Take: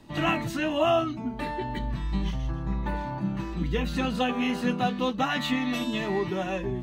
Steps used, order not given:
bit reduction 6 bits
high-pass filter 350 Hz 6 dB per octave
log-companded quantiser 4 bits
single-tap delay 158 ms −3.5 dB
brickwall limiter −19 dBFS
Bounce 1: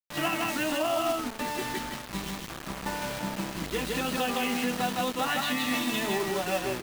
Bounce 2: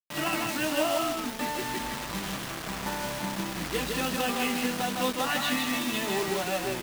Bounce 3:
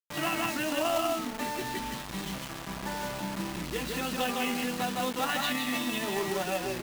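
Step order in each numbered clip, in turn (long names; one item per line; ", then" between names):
high-pass filter, then log-companded quantiser, then bit reduction, then single-tap delay, then brickwall limiter
log-companded quantiser, then brickwall limiter, then high-pass filter, then bit reduction, then single-tap delay
single-tap delay, then brickwall limiter, then high-pass filter, then bit reduction, then log-companded quantiser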